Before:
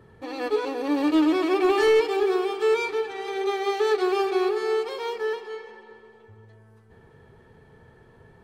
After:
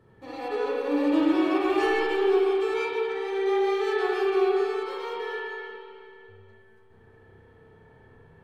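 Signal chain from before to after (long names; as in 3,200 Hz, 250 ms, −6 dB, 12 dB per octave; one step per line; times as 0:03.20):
spring reverb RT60 2.1 s, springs 31/51 ms, chirp 55 ms, DRR −5.5 dB
level −8 dB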